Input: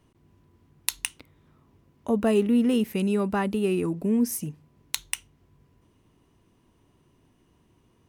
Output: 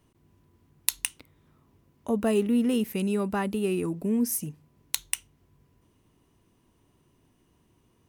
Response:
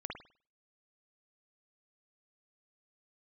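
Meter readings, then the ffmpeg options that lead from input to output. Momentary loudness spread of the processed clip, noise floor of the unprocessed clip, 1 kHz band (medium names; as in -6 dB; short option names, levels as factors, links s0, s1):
9 LU, -65 dBFS, -2.5 dB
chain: -af "highshelf=f=7600:g=7,volume=0.75"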